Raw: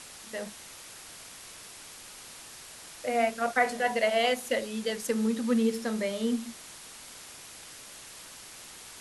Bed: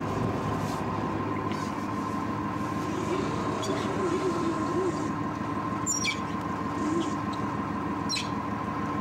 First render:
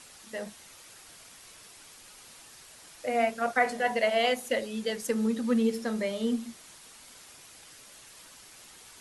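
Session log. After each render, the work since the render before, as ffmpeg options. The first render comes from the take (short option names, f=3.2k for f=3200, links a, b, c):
-af "afftdn=nr=6:nf=-47"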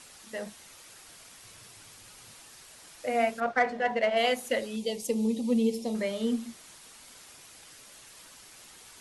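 -filter_complex "[0:a]asettb=1/sr,asplit=3[a][b][c];[a]atrim=end=1.434[d];[b]atrim=start=1.43:end=2.35,asetpts=PTS-STARTPTS,afade=t=in:d=0.004:c=qsin,afade=t=out:st=0.916:d=0.004:c=qsin,equalizer=f=110:w=1.5:g=11.5[e];[c]atrim=start=2.346[f];[d][e]acrossfade=d=0.004:c1=hsin:c2=qsin[g];[g][f]acrossfade=d=0.004:c1=qsin:c2=hsin,asettb=1/sr,asplit=3[h][i][j];[h]atrim=end=3.404[k];[i]atrim=start=3.4:end=4.17,asetpts=PTS-STARTPTS,afade=t=in:d=0.004:c=qsin,afade=t=out:st=0.766:d=0.004:c=qsin,adynamicsmooth=sensitivity=1.5:basefreq=2.9k[l];[j]atrim=start=4.166[m];[k][l]acrossfade=d=0.004:c1=hsin:c2=qsin[n];[n][m]acrossfade=d=0.004:c1=qsin:c2=hsin,asettb=1/sr,asplit=3[o][p][q];[o]atrim=end=4.764[r];[p]atrim=start=4.76:end=5.95,asetpts=PTS-STARTPTS,afade=t=in:d=0.004:c=qsin,afade=t=out:st=1.186:d=0.004:c=qsin,asuperstop=centerf=1500:order=4:qfactor=1[s];[q]atrim=start=5.946[t];[r][s]acrossfade=d=0.004:c1=hsin:c2=qsin[u];[u][t]acrossfade=d=0.004:c1=qsin:c2=hsin"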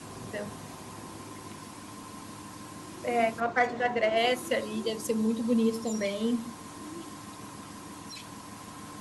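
-filter_complex "[1:a]volume=-14dB[a];[0:a][a]amix=inputs=2:normalize=0"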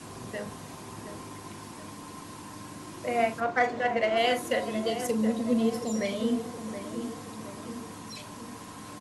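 -filter_complex "[0:a]asplit=2[a][b];[b]adelay=41,volume=-12dB[c];[a][c]amix=inputs=2:normalize=0,asplit=2[d][e];[e]adelay=721,lowpass=f=1.6k:p=1,volume=-9dB,asplit=2[f][g];[g]adelay=721,lowpass=f=1.6k:p=1,volume=0.54,asplit=2[h][i];[i]adelay=721,lowpass=f=1.6k:p=1,volume=0.54,asplit=2[j][k];[k]adelay=721,lowpass=f=1.6k:p=1,volume=0.54,asplit=2[l][m];[m]adelay=721,lowpass=f=1.6k:p=1,volume=0.54,asplit=2[n][o];[o]adelay=721,lowpass=f=1.6k:p=1,volume=0.54[p];[f][h][j][l][n][p]amix=inputs=6:normalize=0[q];[d][q]amix=inputs=2:normalize=0"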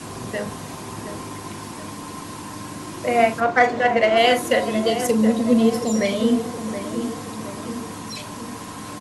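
-af "volume=9dB"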